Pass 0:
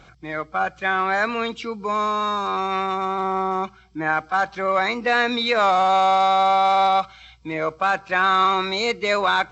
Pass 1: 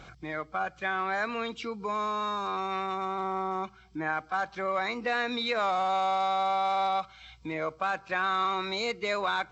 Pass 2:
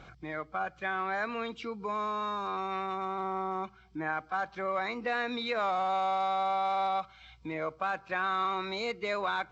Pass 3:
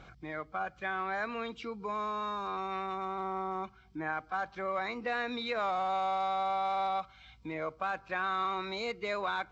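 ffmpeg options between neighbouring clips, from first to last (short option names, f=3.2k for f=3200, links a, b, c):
-af "acompressor=threshold=-43dB:ratio=1.5"
-af "highshelf=f=5.3k:g=-9.5,volume=-2dB"
-af "aeval=exprs='val(0)+0.000631*(sin(2*PI*50*n/s)+sin(2*PI*2*50*n/s)/2+sin(2*PI*3*50*n/s)/3+sin(2*PI*4*50*n/s)/4+sin(2*PI*5*50*n/s)/5)':c=same,volume=-2dB"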